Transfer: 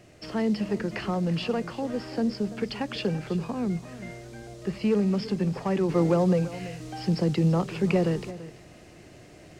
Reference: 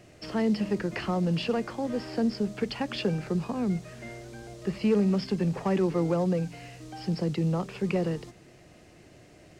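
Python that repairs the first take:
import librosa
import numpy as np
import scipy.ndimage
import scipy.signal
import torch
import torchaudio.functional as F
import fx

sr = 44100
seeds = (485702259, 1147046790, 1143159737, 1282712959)

y = fx.fix_echo_inverse(x, sr, delay_ms=336, level_db=-15.5)
y = fx.fix_level(y, sr, at_s=5.89, step_db=-4.0)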